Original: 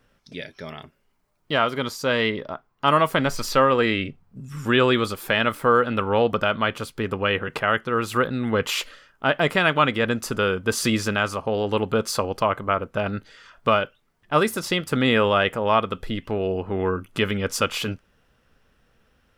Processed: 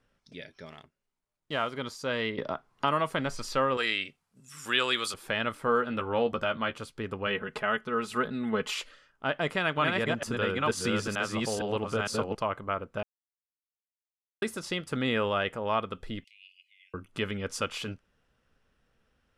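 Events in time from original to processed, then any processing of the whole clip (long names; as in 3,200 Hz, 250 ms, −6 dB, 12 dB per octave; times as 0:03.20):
0:00.66–0:01.74: mu-law and A-law mismatch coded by A
0:02.38–0:03.13: multiband upward and downward compressor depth 70%
0:03.77–0:05.14: spectral tilt +4.5 dB per octave
0:05.66–0:06.73: double-tracking delay 13 ms −6.5 dB
0:07.26–0:08.74: comb filter 4.7 ms
0:09.31–0:12.35: delay that plays each chunk backwards 461 ms, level −1.5 dB
0:13.03–0:14.42: silence
0:16.24–0:16.94: Butterworth high-pass 2,100 Hz 96 dB per octave
whole clip: low-pass filter 11,000 Hz 24 dB per octave; level −9 dB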